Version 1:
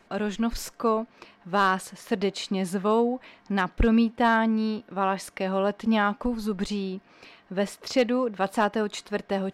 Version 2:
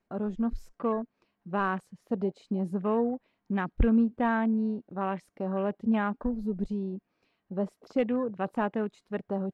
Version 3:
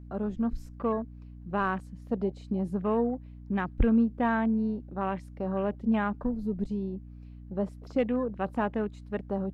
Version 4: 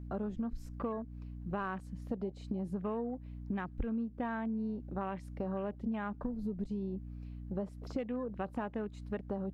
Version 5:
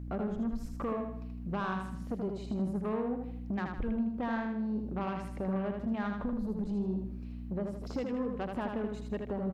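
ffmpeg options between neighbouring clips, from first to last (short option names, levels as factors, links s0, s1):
-af "afwtdn=0.0178,lowshelf=f=430:g=8,volume=0.376"
-af "aeval=exprs='val(0)+0.00631*(sin(2*PI*60*n/s)+sin(2*PI*2*60*n/s)/2+sin(2*PI*3*60*n/s)/3+sin(2*PI*4*60*n/s)/4+sin(2*PI*5*60*n/s)/5)':c=same"
-af "acompressor=threshold=0.0178:ratio=6,volume=1.12"
-filter_complex "[0:a]asoftclip=type=tanh:threshold=0.0266,asplit=2[s0][s1];[s1]aecho=0:1:79|158|237|316|395:0.596|0.25|0.105|0.0441|0.0185[s2];[s0][s2]amix=inputs=2:normalize=0,volume=1.58"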